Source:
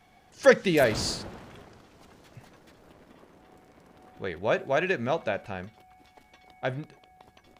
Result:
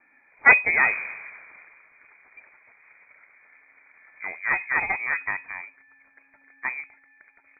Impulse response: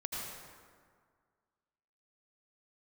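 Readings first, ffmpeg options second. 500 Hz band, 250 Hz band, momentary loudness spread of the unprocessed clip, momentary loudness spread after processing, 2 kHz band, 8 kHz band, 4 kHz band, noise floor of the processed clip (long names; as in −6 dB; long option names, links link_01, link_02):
−14.5 dB, −14.5 dB, 18 LU, 21 LU, +10.5 dB, below −40 dB, below −40 dB, −61 dBFS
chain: -af "aeval=exprs='0.596*(cos(1*acos(clip(val(0)/0.596,-1,1)))-cos(1*PI/2))+0.168*(cos(4*acos(clip(val(0)/0.596,-1,1)))-cos(4*PI/2))+0.0168*(cos(7*acos(clip(val(0)/0.596,-1,1)))-cos(7*PI/2))':channel_layout=same,lowpass=frequency=2100:width_type=q:width=0.5098,lowpass=frequency=2100:width_type=q:width=0.6013,lowpass=frequency=2100:width_type=q:width=0.9,lowpass=frequency=2100:width_type=q:width=2.563,afreqshift=-2500,volume=1.5dB"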